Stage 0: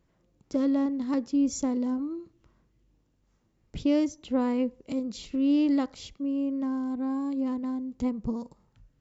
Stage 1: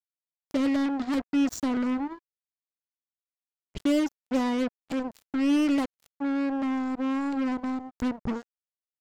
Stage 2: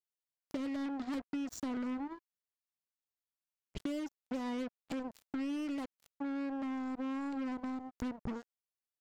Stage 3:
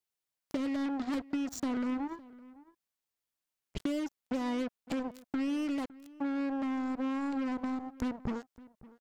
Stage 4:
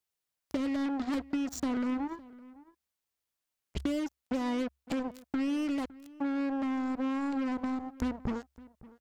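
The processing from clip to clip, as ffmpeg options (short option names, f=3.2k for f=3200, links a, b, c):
-af "acrusher=bits=4:mix=0:aa=0.5"
-af "acompressor=threshold=-31dB:ratio=6,volume=-4.5dB"
-filter_complex "[0:a]asplit=2[a][b];[b]adelay=559.8,volume=-20dB,highshelf=f=4k:g=-12.6[c];[a][c]amix=inputs=2:normalize=0,volume=4.5dB"
-af "equalizer=f=67:t=o:w=0.23:g=11,volume=1.5dB"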